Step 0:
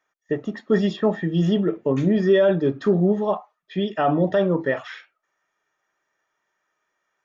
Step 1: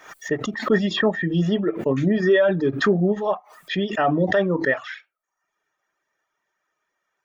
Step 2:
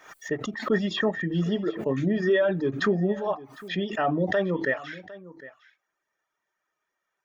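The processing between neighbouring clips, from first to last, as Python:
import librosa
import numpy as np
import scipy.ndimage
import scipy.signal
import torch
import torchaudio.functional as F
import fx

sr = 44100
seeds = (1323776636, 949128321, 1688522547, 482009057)

y1 = fx.dereverb_blind(x, sr, rt60_s=0.63)
y1 = fx.dynamic_eq(y1, sr, hz=1800.0, q=2.2, threshold_db=-43.0, ratio=4.0, max_db=6)
y1 = fx.pre_swell(y1, sr, db_per_s=100.0)
y2 = y1 + 10.0 ** (-18.5 / 20.0) * np.pad(y1, (int(756 * sr / 1000.0), 0))[:len(y1)]
y2 = y2 * 10.0 ** (-5.0 / 20.0)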